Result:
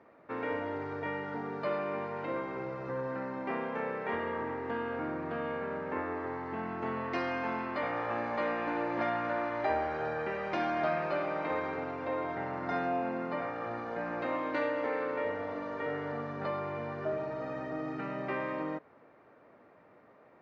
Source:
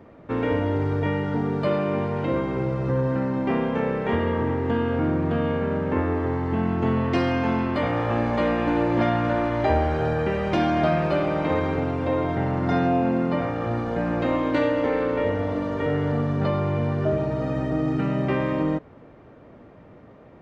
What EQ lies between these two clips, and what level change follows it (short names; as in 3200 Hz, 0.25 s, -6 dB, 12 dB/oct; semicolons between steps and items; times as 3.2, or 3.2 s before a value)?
HPF 1100 Hz 6 dB/oct; air absorption 150 m; bell 3200 Hz -8 dB 0.5 oct; -2.0 dB